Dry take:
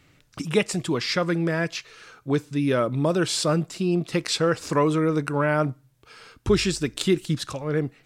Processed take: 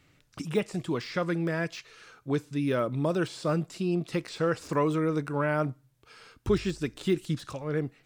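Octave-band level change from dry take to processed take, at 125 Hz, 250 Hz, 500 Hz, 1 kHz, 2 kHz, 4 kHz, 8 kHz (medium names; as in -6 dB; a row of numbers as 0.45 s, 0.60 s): -5.0 dB, -5.0 dB, -5.0 dB, -5.0 dB, -6.5 dB, -12.5 dB, -14.5 dB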